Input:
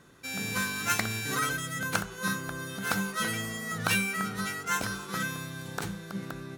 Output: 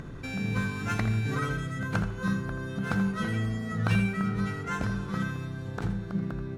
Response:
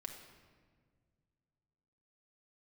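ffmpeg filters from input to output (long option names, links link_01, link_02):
-filter_complex "[0:a]aemphasis=mode=reproduction:type=riaa,acompressor=mode=upward:threshold=-27dB:ratio=2.5,asplit=2[link_01][link_02];[1:a]atrim=start_sample=2205,adelay=82[link_03];[link_02][link_03]afir=irnorm=-1:irlink=0,volume=-6.5dB[link_04];[link_01][link_04]amix=inputs=2:normalize=0,volume=-3dB"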